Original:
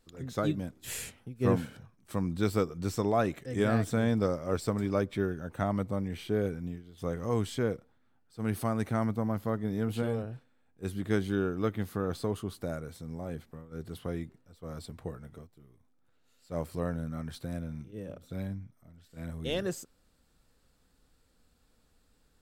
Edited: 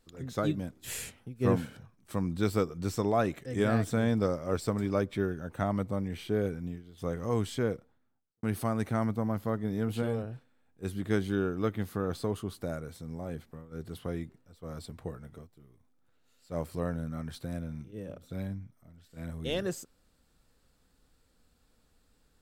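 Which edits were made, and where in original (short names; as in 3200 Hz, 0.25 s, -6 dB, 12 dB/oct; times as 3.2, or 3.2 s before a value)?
7.73–8.43 studio fade out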